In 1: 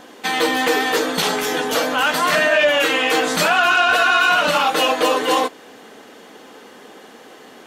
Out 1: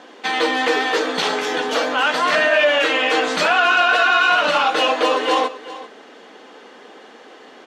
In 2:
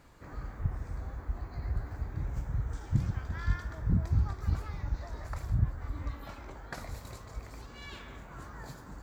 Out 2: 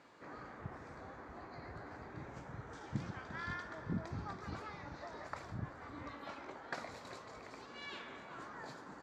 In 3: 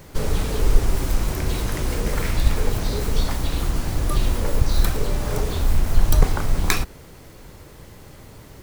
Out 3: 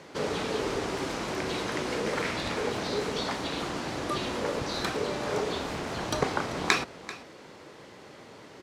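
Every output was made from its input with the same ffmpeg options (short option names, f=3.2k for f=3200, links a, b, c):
-af "highpass=260,lowpass=5.1k,aecho=1:1:389:0.158"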